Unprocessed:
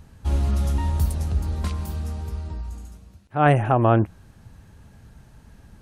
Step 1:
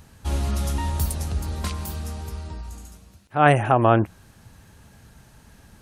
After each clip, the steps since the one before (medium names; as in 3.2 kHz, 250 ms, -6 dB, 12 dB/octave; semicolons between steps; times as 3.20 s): tilt EQ +1.5 dB/octave; trim +2.5 dB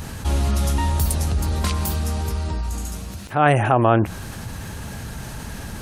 level flattener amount 50%; trim -1 dB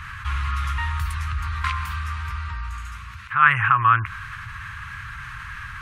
FFT filter 120 Hz 0 dB, 240 Hz -21 dB, 460 Hz -21 dB, 710 Hz -25 dB, 1.1 kHz +14 dB, 2.2 kHz +12 dB, 4.8 kHz -6 dB, 14 kHz -15 dB; trim -5.5 dB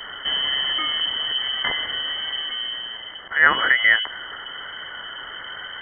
vibrato 1.2 Hz 45 cents; frequency inversion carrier 3.1 kHz